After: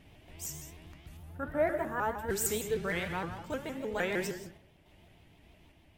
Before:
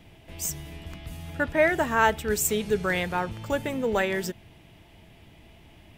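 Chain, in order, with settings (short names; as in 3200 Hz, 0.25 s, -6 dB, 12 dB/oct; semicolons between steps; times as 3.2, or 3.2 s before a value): tape echo 0.119 s, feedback 70%, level -22.5 dB, low-pass 2400 Hz; random-step tremolo; 1.17–2.29 band shelf 3900 Hz -11.5 dB 2.3 oct; non-linear reverb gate 0.22 s flat, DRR 5.5 dB; shaped vibrato saw up 6.5 Hz, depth 160 cents; gain -6 dB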